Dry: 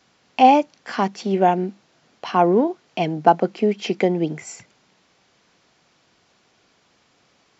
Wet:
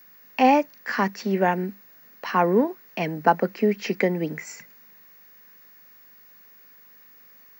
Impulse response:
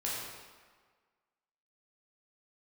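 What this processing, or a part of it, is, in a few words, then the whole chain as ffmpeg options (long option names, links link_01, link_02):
old television with a line whistle: -af "highpass=frequency=170:width=0.5412,highpass=frequency=170:width=1.3066,equalizer=frequency=340:width_type=q:width=4:gain=-7,equalizer=frequency=730:width_type=q:width=4:gain=-9,equalizer=frequency=1800:width_type=q:width=4:gain=9,equalizer=frequency=3300:width_type=q:width=4:gain=-10,lowpass=frequency=6800:width=0.5412,lowpass=frequency=6800:width=1.3066,aeval=exprs='val(0)+0.00355*sin(2*PI*15625*n/s)':channel_layout=same"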